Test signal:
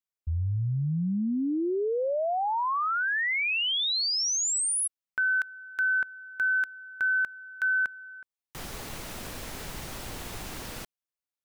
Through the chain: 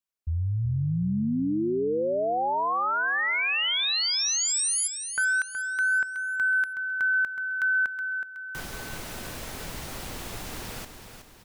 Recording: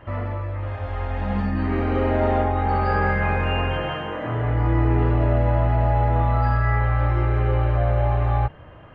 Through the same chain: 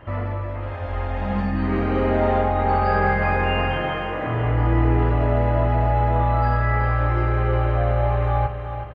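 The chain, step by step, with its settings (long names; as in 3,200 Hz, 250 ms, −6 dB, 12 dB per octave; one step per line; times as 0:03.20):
repeating echo 371 ms, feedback 45%, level −9 dB
level +1 dB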